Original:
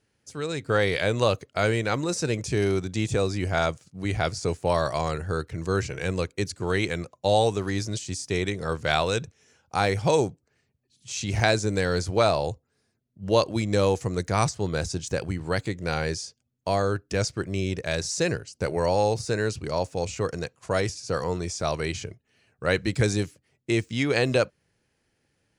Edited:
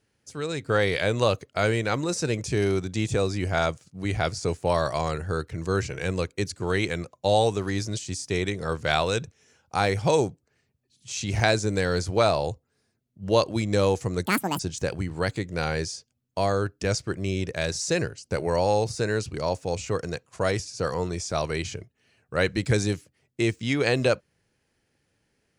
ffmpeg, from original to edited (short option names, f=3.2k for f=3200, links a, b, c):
-filter_complex "[0:a]asplit=3[a][b][c];[a]atrim=end=14.264[d];[b]atrim=start=14.26:end=14.89,asetpts=PTS-STARTPTS,asetrate=83349,aresample=44100[e];[c]atrim=start=14.886[f];[d][e]acrossfade=d=0.004:c1=hsin:c2=hsin[g];[g][f]acrossfade=d=0.004:c1=hsin:c2=hsin"